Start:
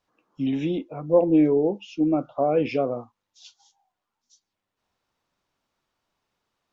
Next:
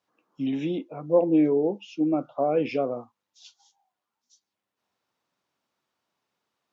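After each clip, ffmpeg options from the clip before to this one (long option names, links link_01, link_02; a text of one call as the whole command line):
ffmpeg -i in.wav -af "highpass=140,volume=-2dB" out.wav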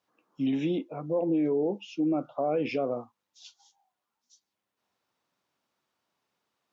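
ffmpeg -i in.wav -af "alimiter=limit=-20dB:level=0:latency=1:release=62" out.wav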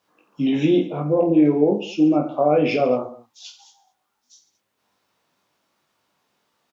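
ffmpeg -i in.wav -af "aecho=1:1:20|48|87.2|142.1|218.9:0.631|0.398|0.251|0.158|0.1,volume=8.5dB" out.wav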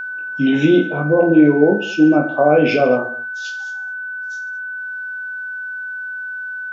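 ffmpeg -i in.wav -af "aeval=exprs='val(0)+0.0355*sin(2*PI*1500*n/s)':channel_layout=same,volume=4.5dB" out.wav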